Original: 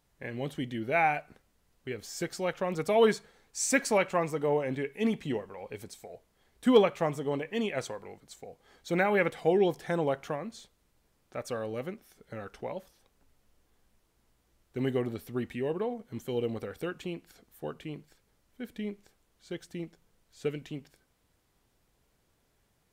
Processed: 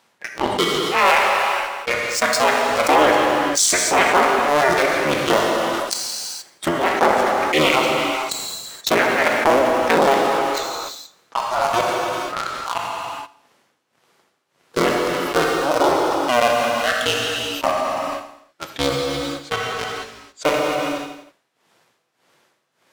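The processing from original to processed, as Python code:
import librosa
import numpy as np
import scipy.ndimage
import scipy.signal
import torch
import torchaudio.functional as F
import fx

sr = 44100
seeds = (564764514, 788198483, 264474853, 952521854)

y = fx.cycle_switch(x, sr, every=3, mode='inverted')
y = fx.weighting(y, sr, curve='A')
y = fx.noise_reduce_blind(y, sr, reduce_db=19)
y = scipy.signal.sosfilt(scipy.signal.butter(4, 90.0, 'highpass', fs=sr, output='sos'), y)
y = fx.high_shelf(y, sr, hz=5100.0, db=-6.0)
y = fx.leveller(y, sr, passes=3)
y = y * (1.0 - 1.0 / 2.0 + 1.0 / 2.0 * np.cos(2.0 * np.pi * 1.7 * (np.arange(len(y)) / sr)))
y = fx.echo_feedback(y, sr, ms=84, feedback_pct=50, wet_db=-21)
y = fx.rev_gated(y, sr, seeds[0], gate_ms=500, shape='falling', drr_db=5.5)
y = fx.env_flatten(y, sr, amount_pct=70)
y = y * 10.0 ** (2.0 / 20.0)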